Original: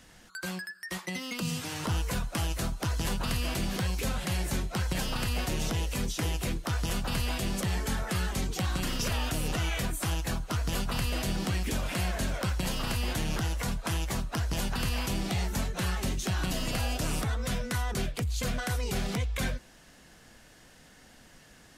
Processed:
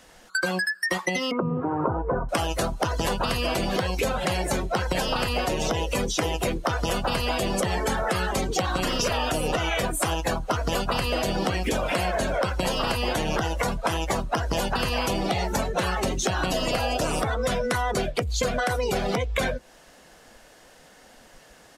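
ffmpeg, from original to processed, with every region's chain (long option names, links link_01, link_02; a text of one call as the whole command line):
ffmpeg -i in.wav -filter_complex "[0:a]asettb=1/sr,asplit=3[link_01][link_02][link_03];[link_01]atrim=end=1.314[link_04];[link_02]atrim=start=1.31:end=2.29,asetpts=PTS-STARTPTS,afade=type=in:duration=0.004:curve=qsin,afade=type=out:start_time=0.976:duration=0.004:curve=qsin,lowpass=frequency=1400:width=0.5412,lowpass=frequency=1400:width=1.3066,equalizer=frequency=350:width_type=o:width=0.44:gain=6.5,aecho=1:1:7.4:0.31,atrim=end_sample=43218[link_05];[link_03]atrim=start=2.286[link_06];[link_04][link_05]acrossfade=duration=0.004:curve1=hsin:curve2=qsin[link_07];[link_07][link_06]acrossfade=duration=0.004:curve1=qsin:curve2=hsin,afftdn=noise_reduction=14:noise_floor=-40,firequalizer=gain_entry='entry(110,0);entry(510,14);entry(1700,8)':delay=0.05:min_phase=1,acompressor=threshold=-32dB:ratio=5,volume=9dB" out.wav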